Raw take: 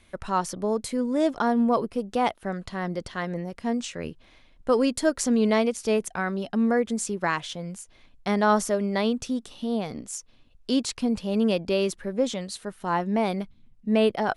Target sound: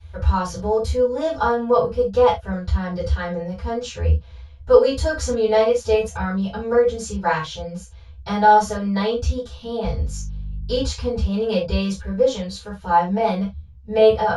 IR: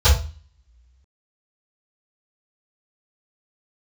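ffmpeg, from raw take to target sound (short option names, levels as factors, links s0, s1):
-filter_complex "[0:a]asettb=1/sr,asplit=3[s0][s1][s2];[s0]atrim=end=9.844[s3];[s1]atrim=start=9.84:end=10.82,asetpts=PTS-STARTPTS,afade=t=in:d=0.004:c=qsin,afade=t=out:st=0.976:d=0.004:c=qsin,aeval=exprs='val(0)+0.01*(sin(2*PI*50*n/s)+sin(2*PI*2*50*n/s)/2+sin(2*PI*3*50*n/s)/3+sin(2*PI*4*50*n/s)/4+sin(2*PI*5*50*n/s)/5)':c=same[s4];[s2]atrim=start=10.816[s5];[s3][s4]acrossfade=d=0.004:c1=hsin:c2=qsin[s6];[s6][s5]acrossfade=d=0.004:c1=qsin:c2=hsin[s7];[1:a]atrim=start_sample=2205,afade=t=out:st=0.14:d=0.01,atrim=end_sample=6615[s8];[s7][s8]afir=irnorm=-1:irlink=0,volume=0.158"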